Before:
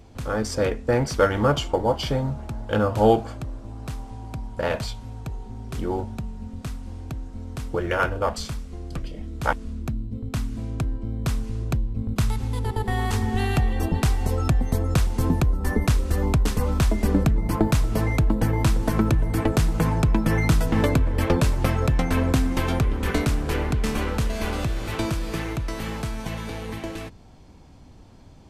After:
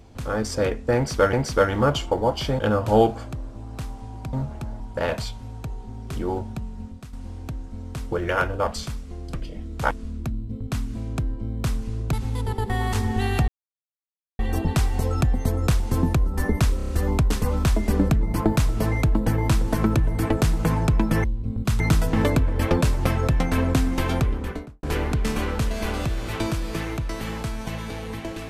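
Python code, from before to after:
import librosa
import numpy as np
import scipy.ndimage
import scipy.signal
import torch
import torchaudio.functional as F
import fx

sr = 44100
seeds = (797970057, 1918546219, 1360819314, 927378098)

y = fx.studio_fade_out(x, sr, start_s=22.78, length_s=0.64)
y = fx.edit(y, sr, fx.repeat(start_s=0.95, length_s=0.38, count=2),
    fx.move(start_s=2.21, length_s=0.47, to_s=4.42),
    fx.fade_out_to(start_s=6.47, length_s=0.28, curve='qua', floor_db=-10.0),
    fx.move(start_s=11.75, length_s=0.56, to_s=20.39),
    fx.insert_silence(at_s=13.66, length_s=0.91),
    fx.stutter(start_s=16.04, slice_s=0.03, count=5), tone=tone)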